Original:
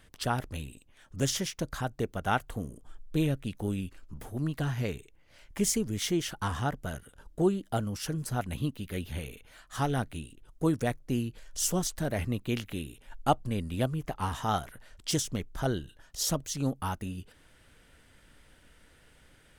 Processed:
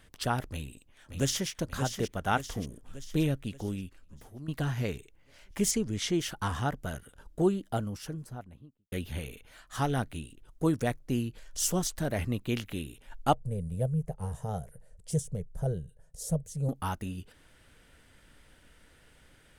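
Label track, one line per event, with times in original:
0.490000	1.490000	echo throw 0.58 s, feedback 55%, level -7.5 dB
3.270000	4.480000	fade out, to -13 dB
5.710000	6.140000	LPF 7900 Hz
7.470000	8.920000	studio fade out
13.340000	16.690000	EQ curve 110 Hz 0 dB, 160 Hz +5 dB, 300 Hz -20 dB, 470 Hz +3 dB, 1200 Hz -20 dB, 1700 Hz -16 dB, 3300 Hz -22 dB, 5400 Hz -15 dB, 9600 Hz -1 dB, 14000 Hz -15 dB

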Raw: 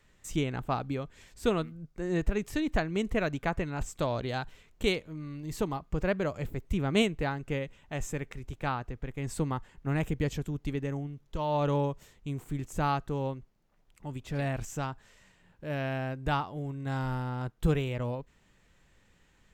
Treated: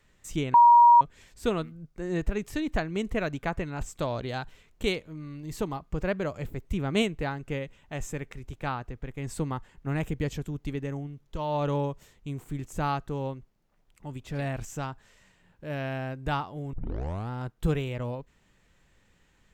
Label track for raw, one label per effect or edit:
0.540000	1.010000	bleep 951 Hz -12 dBFS
16.730000	16.730000	tape start 0.57 s

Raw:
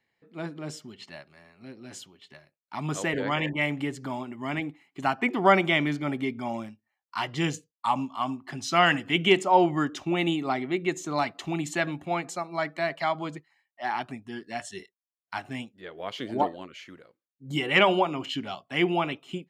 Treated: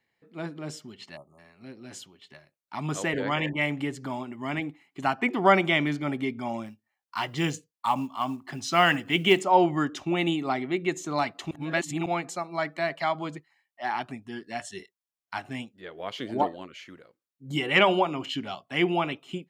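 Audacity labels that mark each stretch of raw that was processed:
1.170000	1.390000	spectral delete 1300–6100 Hz
6.660000	9.410000	short-mantissa float mantissa of 4-bit
11.510000	12.060000	reverse

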